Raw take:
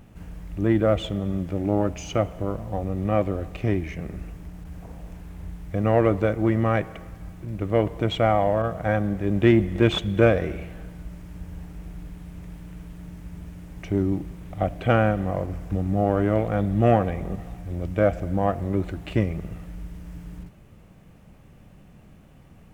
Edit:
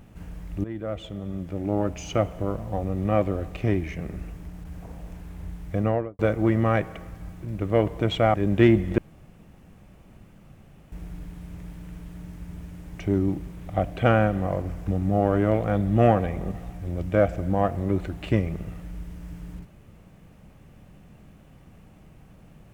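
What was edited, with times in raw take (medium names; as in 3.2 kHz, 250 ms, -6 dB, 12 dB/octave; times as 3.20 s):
0.64–2.23 s: fade in, from -16.5 dB
5.75–6.19 s: studio fade out
8.34–9.18 s: delete
9.82–11.76 s: room tone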